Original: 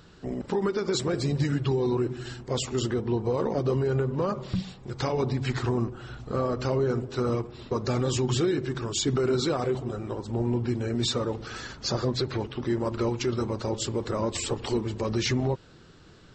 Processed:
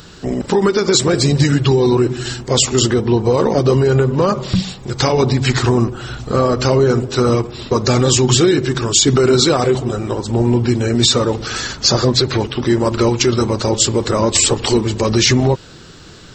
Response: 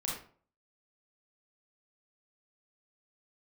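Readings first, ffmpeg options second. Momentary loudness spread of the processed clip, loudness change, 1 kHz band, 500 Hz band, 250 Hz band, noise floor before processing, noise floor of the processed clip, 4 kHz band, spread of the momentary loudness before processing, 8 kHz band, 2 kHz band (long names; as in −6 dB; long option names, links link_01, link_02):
7 LU, +13.5 dB, +13.0 dB, +12.5 dB, +12.5 dB, −52 dBFS, −38 dBFS, +16.5 dB, 7 LU, +19.0 dB, +14.5 dB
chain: -af "highshelf=frequency=3700:gain=10,alimiter=level_in=13.5dB:limit=-1dB:release=50:level=0:latency=1,volume=-1dB"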